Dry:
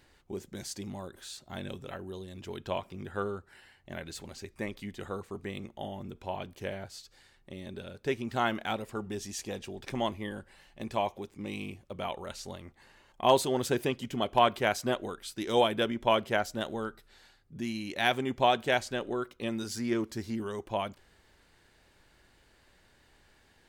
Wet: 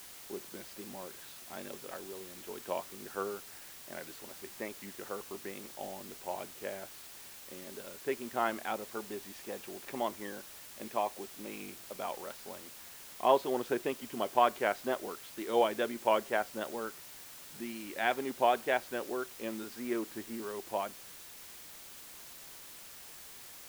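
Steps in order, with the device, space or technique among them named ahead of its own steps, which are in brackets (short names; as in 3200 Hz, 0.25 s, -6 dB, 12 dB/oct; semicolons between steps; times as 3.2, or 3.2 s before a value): wax cylinder (BPF 290–2200 Hz; wow and flutter; white noise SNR 13 dB); gain -2 dB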